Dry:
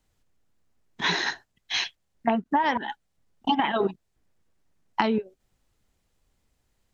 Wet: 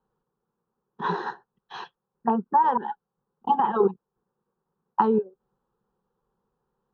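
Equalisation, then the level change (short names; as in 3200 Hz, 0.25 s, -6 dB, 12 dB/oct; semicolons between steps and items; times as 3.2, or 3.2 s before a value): HPF 300 Hz 6 dB/oct; LPF 1100 Hz 12 dB/oct; fixed phaser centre 430 Hz, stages 8; +7.5 dB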